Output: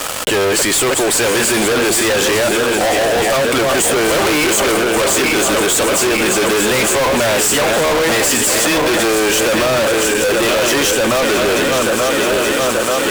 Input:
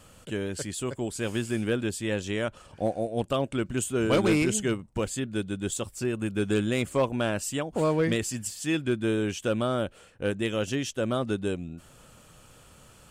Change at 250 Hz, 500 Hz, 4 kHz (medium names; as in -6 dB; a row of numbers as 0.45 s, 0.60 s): +10.0 dB, +15.0 dB, +21.0 dB